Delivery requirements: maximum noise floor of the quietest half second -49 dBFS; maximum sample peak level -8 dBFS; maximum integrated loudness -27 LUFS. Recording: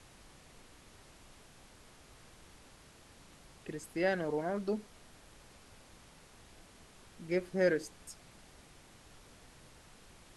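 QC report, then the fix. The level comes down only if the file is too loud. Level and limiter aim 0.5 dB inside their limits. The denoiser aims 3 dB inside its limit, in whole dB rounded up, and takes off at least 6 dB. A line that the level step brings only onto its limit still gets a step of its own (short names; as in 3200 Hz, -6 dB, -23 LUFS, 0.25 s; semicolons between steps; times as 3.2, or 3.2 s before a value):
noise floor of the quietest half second -58 dBFS: OK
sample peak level -16.5 dBFS: OK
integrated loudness -35.0 LUFS: OK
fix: none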